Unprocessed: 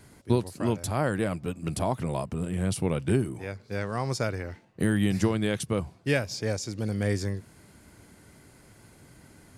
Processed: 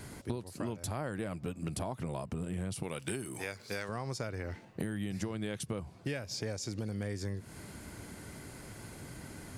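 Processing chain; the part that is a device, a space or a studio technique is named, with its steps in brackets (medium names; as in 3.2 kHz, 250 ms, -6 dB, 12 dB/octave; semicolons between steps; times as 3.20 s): 2.83–3.89 s: tilt EQ +3 dB/octave; serial compression, peaks first (compression 4:1, threshold -37 dBFS, peak gain reduction 16.5 dB; compression 1.5:1, threshold -48 dBFS, peak gain reduction 6.5 dB); trim +6.5 dB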